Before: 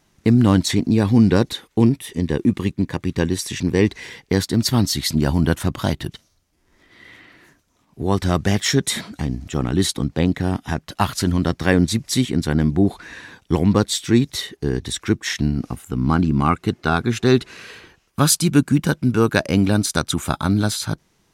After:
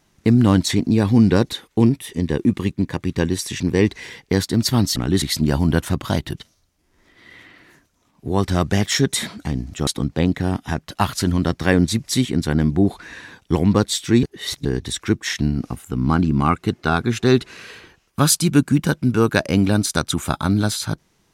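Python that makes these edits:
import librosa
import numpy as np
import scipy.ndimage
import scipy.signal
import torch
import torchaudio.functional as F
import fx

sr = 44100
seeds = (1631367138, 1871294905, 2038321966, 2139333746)

y = fx.edit(x, sr, fx.move(start_s=9.61, length_s=0.26, to_s=4.96),
    fx.reverse_span(start_s=14.23, length_s=0.42), tone=tone)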